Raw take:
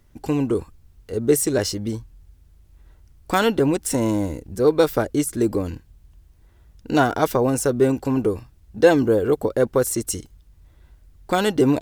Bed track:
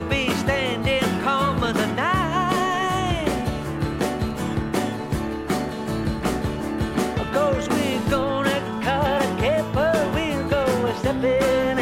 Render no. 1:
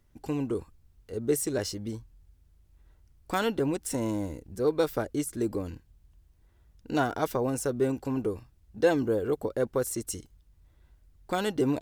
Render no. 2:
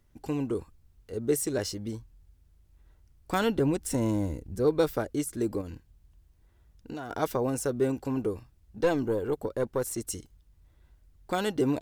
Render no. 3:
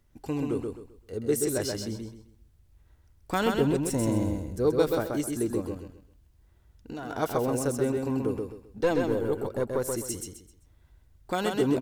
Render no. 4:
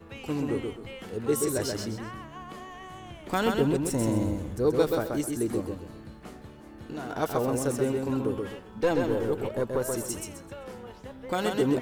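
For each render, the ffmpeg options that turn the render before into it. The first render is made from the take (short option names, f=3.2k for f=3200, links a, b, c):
-af "volume=-9dB"
-filter_complex "[0:a]asettb=1/sr,asplit=3[a][b][c];[a]atrim=end=3.334[d];[b]atrim=start=3.33:end=4.91,asetpts=PTS-STARTPTS,afade=t=in:d=0.004:c=qsin,afade=t=out:st=1.576:d=0.004:c=qsin,lowshelf=f=190:g=7.5[e];[c]atrim=start=4.906[f];[d][e]acrossfade=d=0.004:c1=hsin:c2=qsin[g];[g][f]acrossfade=d=0.004:c1=qsin:c2=hsin,asettb=1/sr,asplit=3[h][i][j];[h]atrim=end=5.614[k];[i]atrim=start=5.61:end=7.11,asetpts=PTS-STARTPTS,afade=t=in:d=0.004:c=qsin,afade=t=out:st=1.496:d=0.004:c=qsin,acompressor=threshold=-34dB:ratio=6:attack=3.2:release=140:knee=1:detection=peak[l];[j]atrim=start=7.106[m];[k][l]acrossfade=d=0.004:c1=hsin:c2=qsin[n];[n][m]acrossfade=d=0.004:c1=qsin:c2=hsin,asettb=1/sr,asplit=3[o][p][q];[o]atrim=end=8.784[r];[p]atrim=start=8.78:end=9.98,asetpts=PTS-STARTPTS,afade=t=in:d=0.004:c=qsin,afade=t=out:st=1.196:d=0.004:c=qsin,aeval=exprs='(tanh(5.62*val(0)+0.4)-tanh(0.4))/5.62':c=same[s];[q]atrim=start=9.976[t];[r][s]acrossfade=d=0.004:c1=hsin:c2=qsin[u];[u][t]acrossfade=d=0.004:c1=qsin:c2=hsin"
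-af "aecho=1:1:130|260|390|520:0.631|0.183|0.0531|0.0154"
-filter_complex "[1:a]volume=-21dB[a];[0:a][a]amix=inputs=2:normalize=0"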